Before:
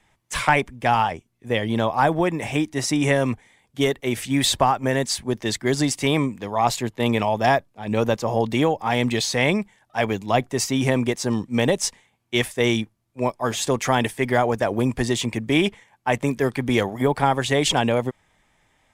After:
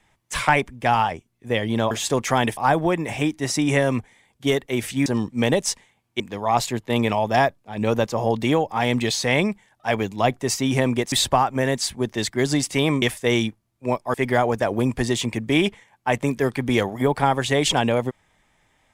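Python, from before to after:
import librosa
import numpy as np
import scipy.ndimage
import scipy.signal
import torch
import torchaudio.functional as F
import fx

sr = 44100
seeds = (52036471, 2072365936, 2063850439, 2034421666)

y = fx.edit(x, sr, fx.swap(start_s=4.4, length_s=1.9, other_s=11.22, other_length_s=1.14),
    fx.move(start_s=13.48, length_s=0.66, to_s=1.91), tone=tone)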